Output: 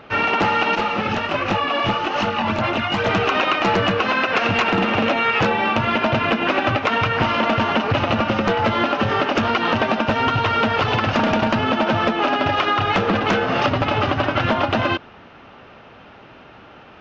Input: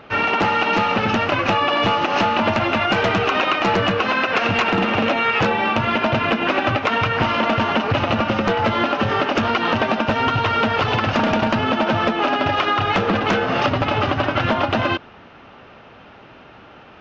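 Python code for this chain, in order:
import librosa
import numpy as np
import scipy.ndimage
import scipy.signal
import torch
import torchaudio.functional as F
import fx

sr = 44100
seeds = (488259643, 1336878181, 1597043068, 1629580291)

y = fx.chorus_voices(x, sr, voices=2, hz=1.3, base_ms=22, depth_ms=3.0, mix_pct=65, at=(0.75, 3.09))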